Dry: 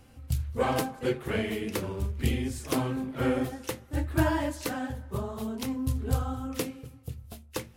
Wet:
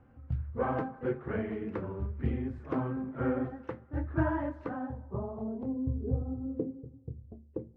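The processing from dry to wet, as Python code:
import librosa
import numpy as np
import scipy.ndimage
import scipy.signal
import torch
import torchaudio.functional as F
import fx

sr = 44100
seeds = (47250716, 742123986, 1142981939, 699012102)

y = fx.highpass(x, sr, hz=180.0, slope=6)
y = fx.high_shelf(y, sr, hz=9600.0, db=7.5)
y = fx.filter_sweep_lowpass(y, sr, from_hz=1500.0, to_hz=410.0, start_s=4.51, end_s=6.19, q=1.8)
y = fx.tilt_eq(y, sr, slope=-3.0)
y = y * librosa.db_to_amplitude(-7.5)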